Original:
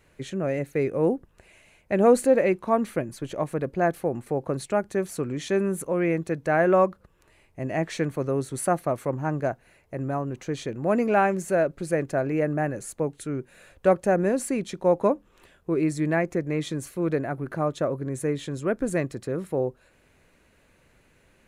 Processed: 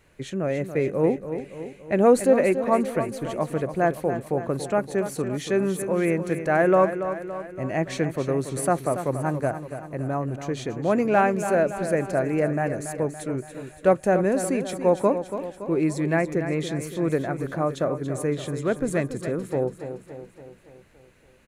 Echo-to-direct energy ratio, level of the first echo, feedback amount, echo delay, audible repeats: −8.5 dB, −10.0 dB, 55%, 283 ms, 5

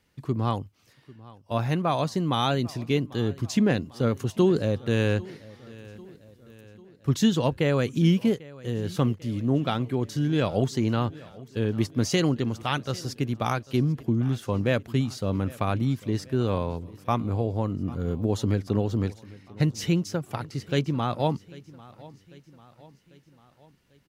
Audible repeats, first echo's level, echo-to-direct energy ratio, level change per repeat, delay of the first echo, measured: 3, −21.0 dB, −19.5 dB, −5.5 dB, 795 ms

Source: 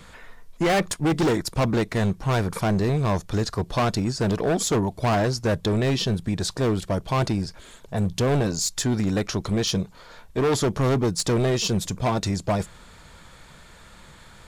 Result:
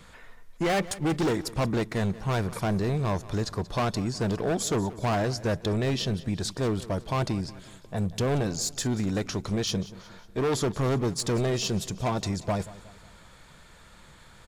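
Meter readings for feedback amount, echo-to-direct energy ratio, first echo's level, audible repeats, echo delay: 48%, −17.0 dB, −18.0 dB, 3, 182 ms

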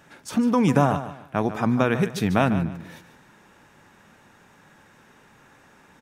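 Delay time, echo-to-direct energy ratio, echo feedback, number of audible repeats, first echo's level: 147 ms, −11.5 dB, 27%, 3, −12.0 dB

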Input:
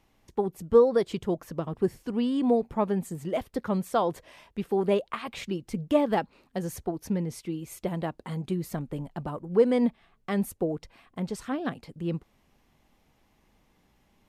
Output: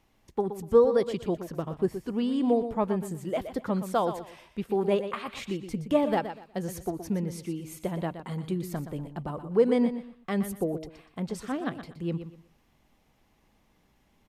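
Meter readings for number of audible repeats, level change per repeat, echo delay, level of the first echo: 3, −11.5 dB, 121 ms, −10.5 dB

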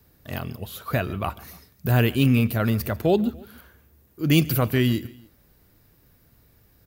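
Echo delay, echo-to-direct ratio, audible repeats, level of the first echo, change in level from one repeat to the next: 145 ms, −21.0 dB, 2, −22.0 dB, −5.5 dB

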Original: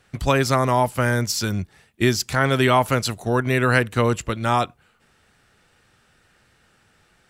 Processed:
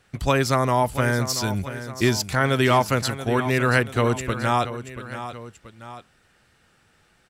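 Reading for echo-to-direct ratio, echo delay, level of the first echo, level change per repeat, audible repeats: −11.0 dB, 682 ms, −12.0 dB, −6.0 dB, 2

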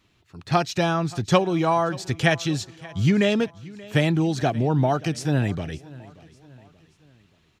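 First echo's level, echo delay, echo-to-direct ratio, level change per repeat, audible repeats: −21.0 dB, 580 ms, −20.0 dB, −6.5 dB, 3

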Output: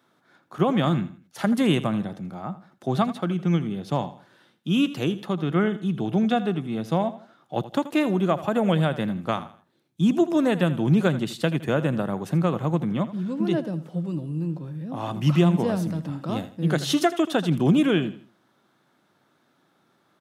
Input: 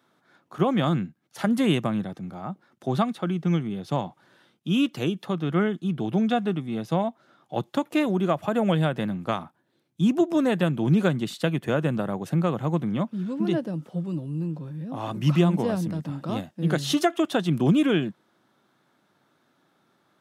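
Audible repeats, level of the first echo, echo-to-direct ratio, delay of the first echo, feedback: 3, −15.0 dB, −14.5 dB, 81 ms, 34%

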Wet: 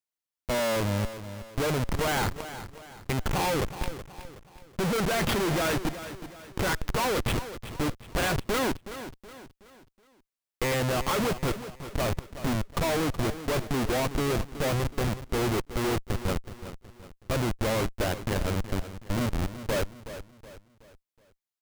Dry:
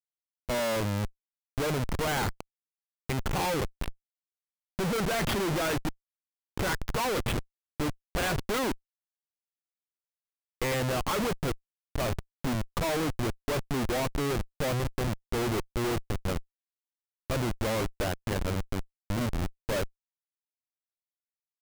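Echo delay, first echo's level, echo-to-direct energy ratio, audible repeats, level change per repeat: 372 ms, −12.5 dB, −11.5 dB, 3, −7.5 dB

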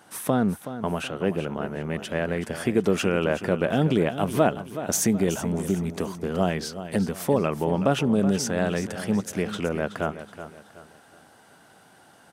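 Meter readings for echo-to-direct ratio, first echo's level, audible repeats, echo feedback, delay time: −11.5 dB, −12.0 dB, 3, 37%, 374 ms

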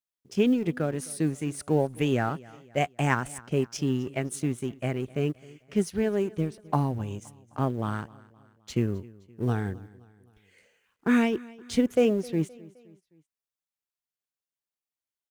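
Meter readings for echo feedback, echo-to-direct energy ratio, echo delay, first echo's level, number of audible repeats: 48%, −21.0 dB, 260 ms, −22.0 dB, 3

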